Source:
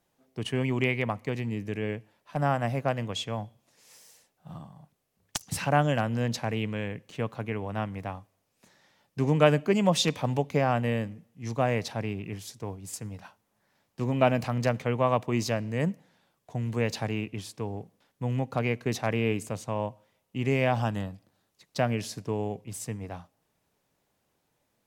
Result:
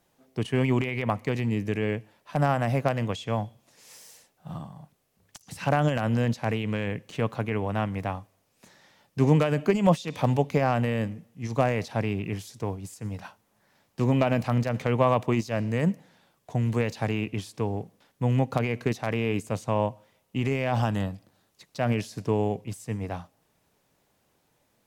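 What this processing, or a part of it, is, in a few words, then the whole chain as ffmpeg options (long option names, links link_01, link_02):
de-esser from a sidechain: -filter_complex "[0:a]asplit=2[link_01][link_02];[link_02]highpass=5500,apad=whole_len=1096761[link_03];[link_01][link_03]sidechaincompress=threshold=-47dB:ratio=6:attack=0.53:release=86,volume=5.5dB"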